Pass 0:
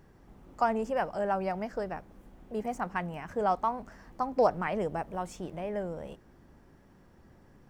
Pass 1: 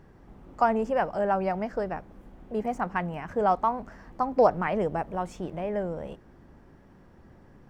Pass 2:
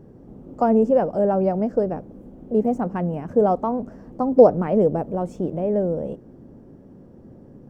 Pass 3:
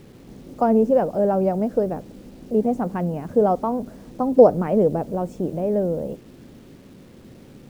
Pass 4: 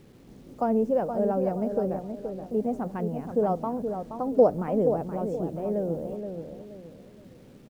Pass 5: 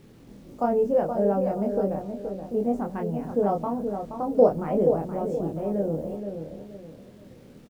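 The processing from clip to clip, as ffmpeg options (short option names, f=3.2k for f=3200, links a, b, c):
-af "highshelf=f=4.5k:g=-9.5,volume=4.5dB"
-af "equalizer=f=125:t=o:w=1:g=8,equalizer=f=250:t=o:w=1:g=10,equalizer=f=500:t=o:w=1:g=10,equalizer=f=1k:t=o:w=1:g=-3,equalizer=f=2k:t=o:w=1:g=-8,equalizer=f=4k:t=o:w=1:g=-4,volume=-1dB"
-af "acrusher=bits=8:mix=0:aa=0.000001"
-filter_complex "[0:a]asplit=2[a][b];[b]adelay=474,lowpass=f=2k:p=1,volume=-7dB,asplit=2[c][d];[d]adelay=474,lowpass=f=2k:p=1,volume=0.35,asplit=2[e][f];[f]adelay=474,lowpass=f=2k:p=1,volume=0.35,asplit=2[g][h];[h]adelay=474,lowpass=f=2k:p=1,volume=0.35[i];[a][c][e][g][i]amix=inputs=5:normalize=0,volume=-7dB"
-filter_complex "[0:a]asplit=2[a][b];[b]adelay=25,volume=-3dB[c];[a][c]amix=inputs=2:normalize=0"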